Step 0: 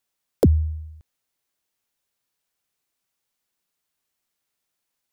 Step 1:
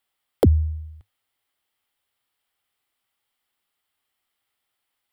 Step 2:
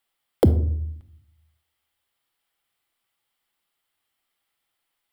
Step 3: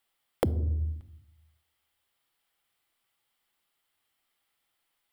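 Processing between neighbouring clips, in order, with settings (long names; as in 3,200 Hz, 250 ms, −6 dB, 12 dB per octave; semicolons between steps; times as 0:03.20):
thirty-one-band graphic EQ 100 Hz +5 dB, 160 Hz −10 dB, 800 Hz +6 dB, 1,250 Hz +6 dB, 2,000 Hz +6 dB, 3,150 Hz +8 dB, 6,300 Hz −10 dB
rectangular room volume 980 cubic metres, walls furnished, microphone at 0.74 metres
downward compressor 10 to 1, threshold −24 dBFS, peak gain reduction 12.5 dB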